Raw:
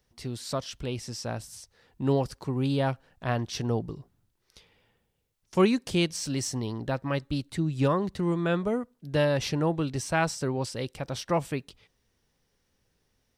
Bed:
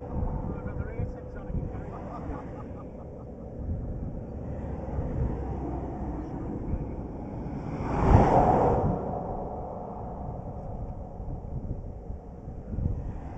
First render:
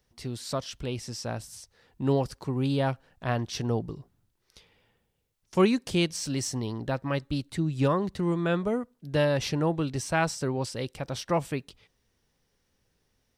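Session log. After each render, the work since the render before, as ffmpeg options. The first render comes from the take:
-af anull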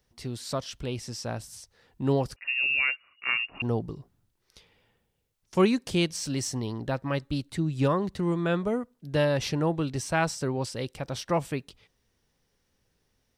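-filter_complex "[0:a]asettb=1/sr,asplit=3[s0][s1][s2];[s0]atrim=end=2.364[s3];[s1]atrim=start=2.36:end=3.62,asetpts=PTS-STARTPTS,afade=t=in:d=0.004:c=qsin,afade=t=out:st=1.256:d=0.004:c=qsin,lowpass=f=2500:t=q:w=0.5098,lowpass=f=2500:t=q:w=0.6013,lowpass=f=2500:t=q:w=0.9,lowpass=f=2500:t=q:w=2.563,afreqshift=-2900[s4];[s2]atrim=start=3.616[s5];[s3][s4]acrossfade=d=0.004:c1=hsin:c2=qsin[s6];[s6][s5]acrossfade=d=0.004:c1=qsin:c2=hsin"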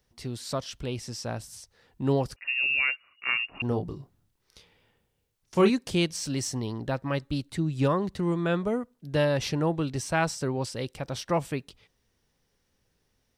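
-filter_complex "[0:a]asettb=1/sr,asplit=3[s0][s1][s2];[s0]atrim=end=3.684[s3];[s1]atrim=start=3.68:end=5.7,asetpts=PTS-STARTPTS,afade=t=in:d=0.004:c=qsin,afade=t=out:st=2.016:d=0.004:c=qsin,asplit=2[s4][s5];[s5]adelay=29,volume=0.473[s6];[s4][s6]amix=inputs=2:normalize=0,atrim=end_sample=89082[s7];[s2]atrim=start=5.696[s8];[s3][s7]acrossfade=d=0.004:c1=hsin:c2=qsin[s9];[s9][s8]acrossfade=d=0.004:c1=qsin:c2=hsin"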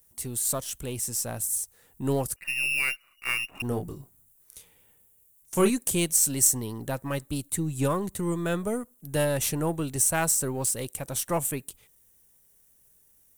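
-af "aeval=exprs='if(lt(val(0),0),0.708*val(0),val(0))':c=same,aexciter=amount=15:drive=3.6:freq=7200"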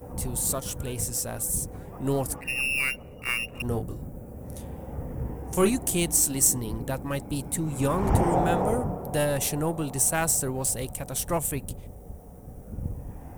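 -filter_complex "[1:a]volume=0.668[s0];[0:a][s0]amix=inputs=2:normalize=0"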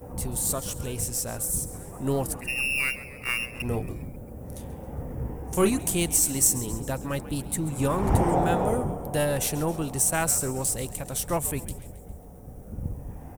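-filter_complex "[0:a]asplit=6[s0][s1][s2][s3][s4][s5];[s1]adelay=135,afreqshift=-87,volume=0.158[s6];[s2]adelay=270,afreqshift=-174,volume=0.0891[s7];[s3]adelay=405,afreqshift=-261,volume=0.0495[s8];[s4]adelay=540,afreqshift=-348,volume=0.0279[s9];[s5]adelay=675,afreqshift=-435,volume=0.0157[s10];[s0][s6][s7][s8][s9][s10]amix=inputs=6:normalize=0"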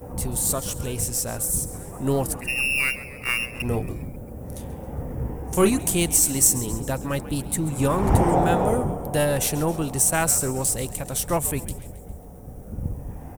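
-af "volume=1.5"

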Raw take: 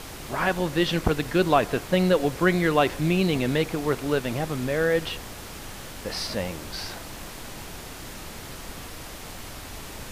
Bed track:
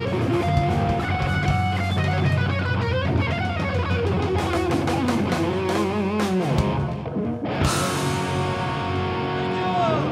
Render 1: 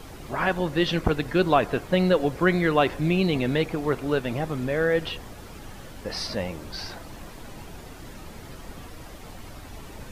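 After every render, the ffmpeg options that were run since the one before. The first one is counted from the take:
-af "afftdn=nr=9:nf=-40"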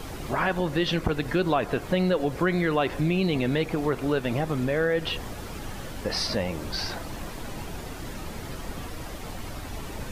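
-filter_complex "[0:a]asplit=2[s0][s1];[s1]alimiter=limit=0.126:level=0:latency=1,volume=0.794[s2];[s0][s2]amix=inputs=2:normalize=0,acompressor=threshold=0.0562:ratio=2"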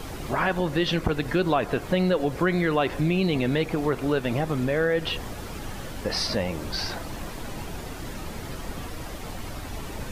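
-af "volume=1.12"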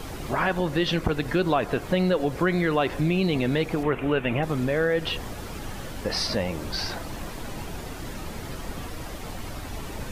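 -filter_complex "[0:a]asettb=1/sr,asplit=3[s0][s1][s2];[s0]atrim=end=3.834[s3];[s1]atrim=start=3.83:end=4.43,asetpts=PTS-STARTPTS,afade=t=in:d=0.004:c=qsin,afade=t=out:st=0.596:d=0.004:c=qsin,highshelf=f=3500:t=q:w=3:g=-9[s4];[s2]atrim=start=4.426[s5];[s3][s4]acrossfade=d=0.004:c1=hsin:c2=qsin[s6];[s6][s5]acrossfade=d=0.004:c1=qsin:c2=hsin"

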